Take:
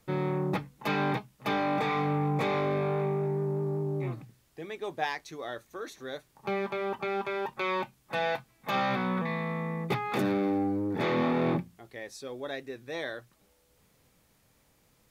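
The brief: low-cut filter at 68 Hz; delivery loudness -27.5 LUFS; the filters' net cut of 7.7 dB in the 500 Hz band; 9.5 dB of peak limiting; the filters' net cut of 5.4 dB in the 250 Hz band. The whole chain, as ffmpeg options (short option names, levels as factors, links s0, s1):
-af "highpass=68,equalizer=f=250:t=o:g=-5,equalizer=f=500:t=o:g=-8.5,volume=3.16,alimiter=limit=0.141:level=0:latency=1"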